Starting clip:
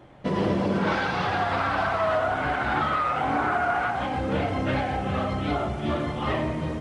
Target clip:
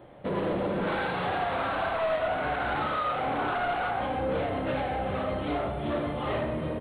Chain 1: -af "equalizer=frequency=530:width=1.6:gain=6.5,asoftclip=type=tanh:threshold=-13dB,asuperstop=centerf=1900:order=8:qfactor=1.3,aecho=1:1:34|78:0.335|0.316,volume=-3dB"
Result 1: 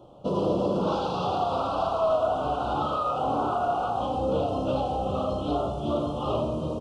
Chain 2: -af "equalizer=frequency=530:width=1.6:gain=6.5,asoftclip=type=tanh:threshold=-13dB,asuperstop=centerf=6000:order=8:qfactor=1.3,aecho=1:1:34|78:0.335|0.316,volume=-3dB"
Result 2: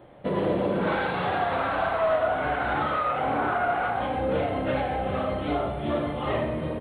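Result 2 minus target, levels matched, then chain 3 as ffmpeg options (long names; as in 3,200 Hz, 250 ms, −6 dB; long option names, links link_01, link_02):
soft clipping: distortion −12 dB
-af "equalizer=frequency=530:width=1.6:gain=6.5,asoftclip=type=tanh:threshold=-22.5dB,asuperstop=centerf=6000:order=8:qfactor=1.3,aecho=1:1:34|78:0.335|0.316,volume=-3dB"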